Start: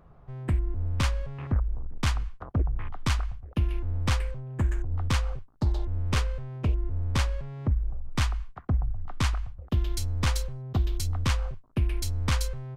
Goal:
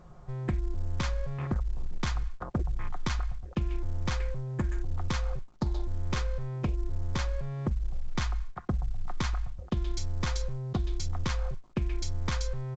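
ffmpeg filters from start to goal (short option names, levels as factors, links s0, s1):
-filter_complex "[0:a]equalizer=f=2800:t=o:w=0.21:g=-6.5,aecho=1:1:5.6:0.4,asplit=2[s0][s1];[s1]alimiter=limit=0.0794:level=0:latency=1:release=118,volume=1.33[s2];[s0][s2]amix=inputs=2:normalize=0,acompressor=threshold=0.1:ratio=12,volume=0.562" -ar 16000 -c:a pcm_alaw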